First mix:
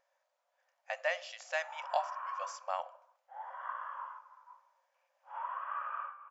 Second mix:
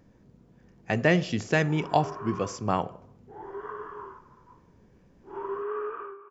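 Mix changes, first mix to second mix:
speech +8.5 dB; master: remove brick-wall FIR high-pass 520 Hz

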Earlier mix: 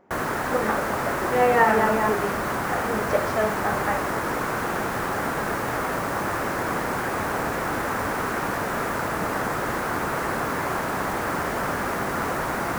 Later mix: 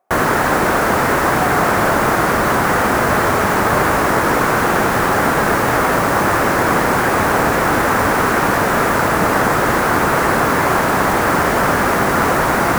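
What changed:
speech: add vowel filter a; background +11.5 dB

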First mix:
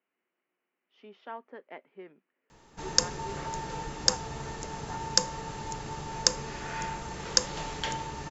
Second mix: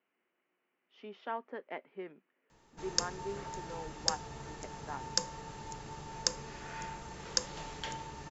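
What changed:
speech +3.0 dB; background -7.5 dB

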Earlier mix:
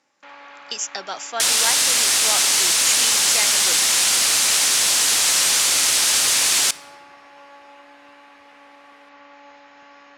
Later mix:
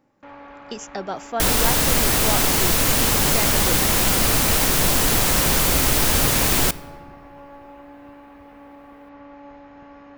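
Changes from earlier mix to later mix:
second sound +4.5 dB; master: remove frequency weighting ITU-R 468

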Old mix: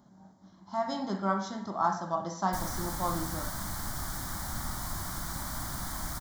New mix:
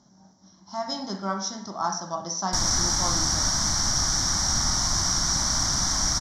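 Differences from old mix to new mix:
background +8.0 dB; master: add resonant low-pass 5.7 kHz, resonance Q 11

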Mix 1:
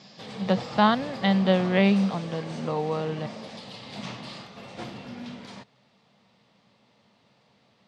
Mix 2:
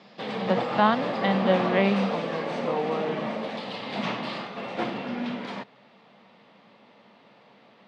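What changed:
background +10.0 dB; master: add three-band isolator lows -21 dB, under 180 Hz, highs -17 dB, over 3.4 kHz

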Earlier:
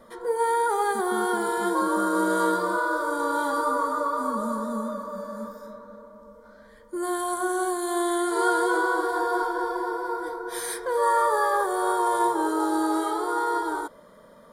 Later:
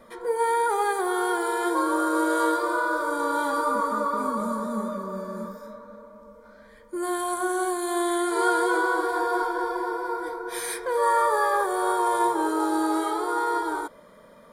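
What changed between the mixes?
speech: entry +2.80 s; master: add peaking EQ 2.4 kHz +9 dB 0.35 oct

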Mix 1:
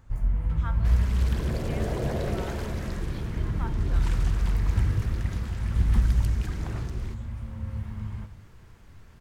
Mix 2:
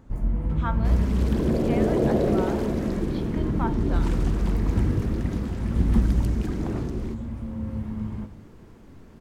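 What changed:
speech +6.5 dB; master: add FFT filter 110 Hz 0 dB, 260 Hz +14 dB, 1.6 kHz -1 dB

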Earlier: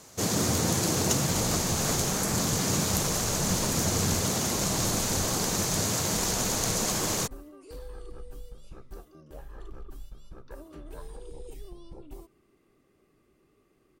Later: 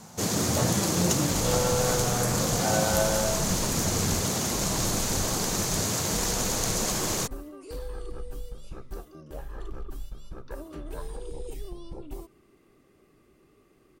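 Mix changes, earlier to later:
speech: unmuted; second sound +5.5 dB; reverb: on, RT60 1.1 s

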